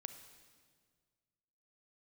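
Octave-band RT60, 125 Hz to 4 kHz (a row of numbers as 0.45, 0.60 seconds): 2.3, 1.9, 1.9, 1.7, 1.6, 1.5 seconds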